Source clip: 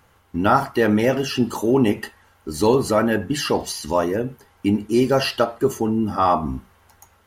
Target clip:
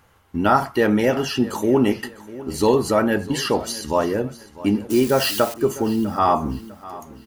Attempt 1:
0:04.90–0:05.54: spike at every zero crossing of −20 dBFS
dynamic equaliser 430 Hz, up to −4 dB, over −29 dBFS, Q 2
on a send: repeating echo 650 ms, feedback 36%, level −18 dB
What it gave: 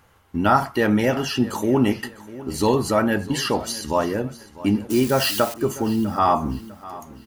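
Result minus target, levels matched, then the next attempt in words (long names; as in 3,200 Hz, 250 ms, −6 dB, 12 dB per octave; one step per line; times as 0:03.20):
125 Hz band +2.5 dB
0:04.90–0:05.54: spike at every zero crossing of −20 dBFS
dynamic equaliser 110 Hz, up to −4 dB, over −29 dBFS, Q 2
on a send: repeating echo 650 ms, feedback 36%, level −18 dB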